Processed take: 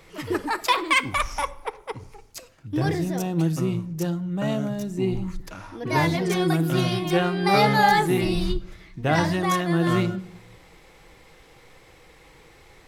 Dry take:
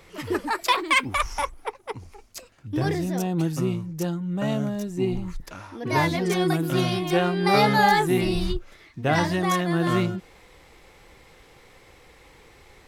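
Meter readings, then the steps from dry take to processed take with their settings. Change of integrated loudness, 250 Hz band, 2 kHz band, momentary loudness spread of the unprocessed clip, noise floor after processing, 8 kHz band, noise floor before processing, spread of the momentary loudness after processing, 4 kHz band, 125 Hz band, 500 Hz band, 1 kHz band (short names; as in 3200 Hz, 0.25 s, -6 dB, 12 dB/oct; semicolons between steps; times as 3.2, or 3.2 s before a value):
+0.5 dB, +0.5 dB, 0.0 dB, 17 LU, -52 dBFS, 0.0 dB, -53 dBFS, 17 LU, 0.0 dB, +1.5 dB, 0.0 dB, +0.5 dB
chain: shoebox room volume 2300 m³, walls furnished, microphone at 0.61 m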